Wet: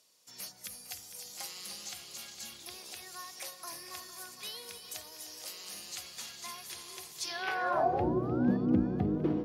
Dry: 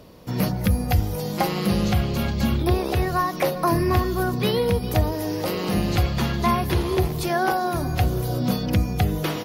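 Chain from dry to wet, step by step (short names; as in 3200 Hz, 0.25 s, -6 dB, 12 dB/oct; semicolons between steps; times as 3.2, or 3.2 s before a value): painted sound rise, 7.24–8.57, 300–1800 Hz -29 dBFS; multi-head echo 0.152 s, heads second and third, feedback 59%, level -12 dB; band-pass sweep 7600 Hz -> 290 Hz, 7.15–8.12; gain +1 dB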